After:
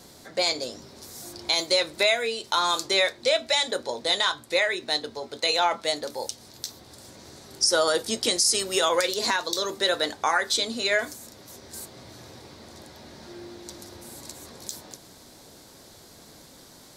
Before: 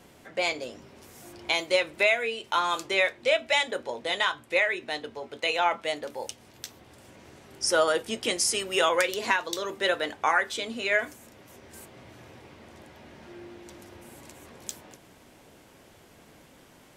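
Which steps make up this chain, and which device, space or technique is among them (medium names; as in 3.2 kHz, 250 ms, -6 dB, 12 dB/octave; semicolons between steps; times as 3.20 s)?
over-bright horn tweeter (resonant high shelf 3.4 kHz +6 dB, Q 3; peak limiter -14.5 dBFS, peak gain reduction 10 dB); trim +3 dB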